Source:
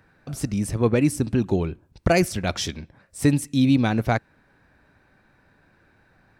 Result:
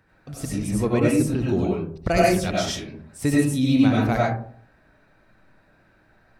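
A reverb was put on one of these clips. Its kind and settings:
comb and all-pass reverb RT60 0.54 s, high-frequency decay 0.35×, pre-delay 55 ms, DRR −4.5 dB
level −4.5 dB

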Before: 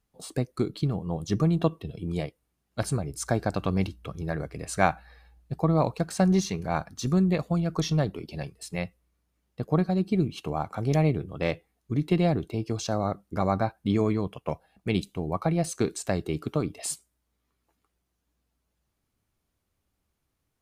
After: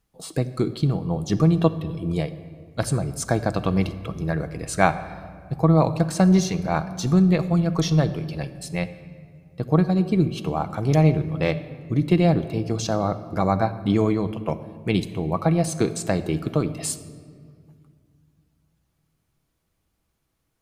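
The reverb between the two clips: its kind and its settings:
rectangular room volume 3,900 cubic metres, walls mixed, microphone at 0.65 metres
level +4 dB

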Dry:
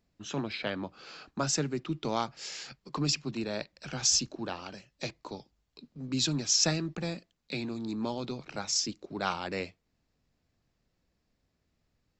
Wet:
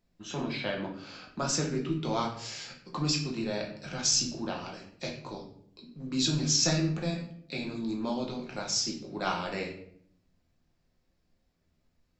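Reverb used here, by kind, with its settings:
rectangular room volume 110 cubic metres, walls mixed, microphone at 0.88 metres
level −2.5 dB

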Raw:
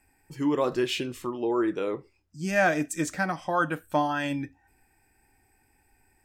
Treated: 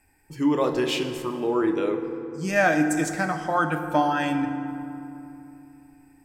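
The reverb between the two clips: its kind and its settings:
feedback delay network reverb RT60 2.9 s, low-frequency decay 1.3×, high-frequency decay 0.5×, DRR 6.5 dB
level +2 dB

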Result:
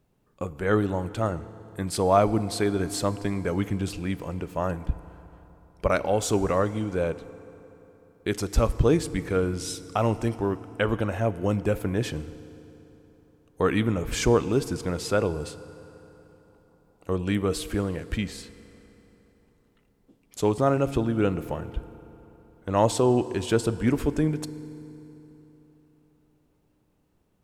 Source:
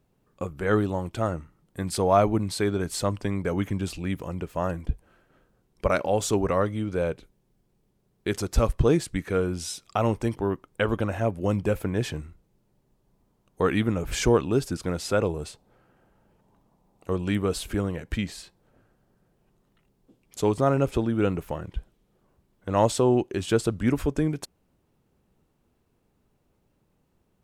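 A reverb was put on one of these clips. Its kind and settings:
feedback delay network reverb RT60 3.6 s, high-frequency decay 0.7×, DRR 14.5 dB

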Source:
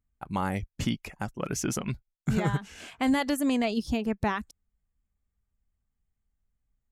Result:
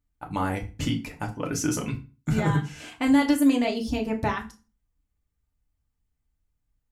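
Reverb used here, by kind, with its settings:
feedback delay network reverb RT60 0.33 s, low-frequency decay 1.25×, high-frequency decay 0.85×, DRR 1 dB

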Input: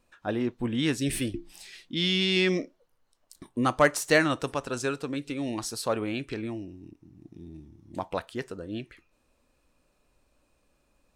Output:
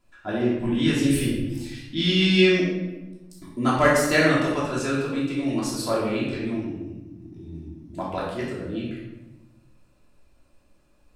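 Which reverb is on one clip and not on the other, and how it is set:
rectangular room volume 490 cubic metres, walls mixed, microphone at 3 metres
level −3.5 dB

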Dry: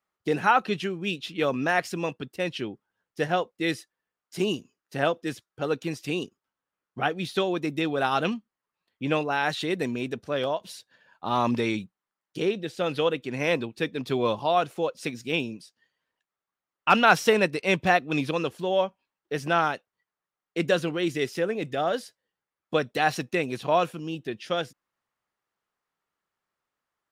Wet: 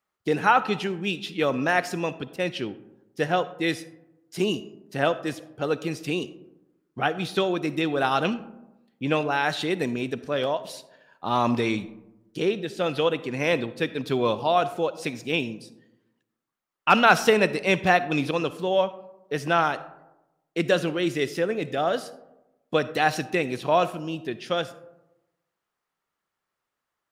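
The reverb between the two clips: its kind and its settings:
comb and all-pass reverb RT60 1 s, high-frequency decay 0.35×, pre-delay 15 ms, DRR 14.5 dB
level +1.5 dB

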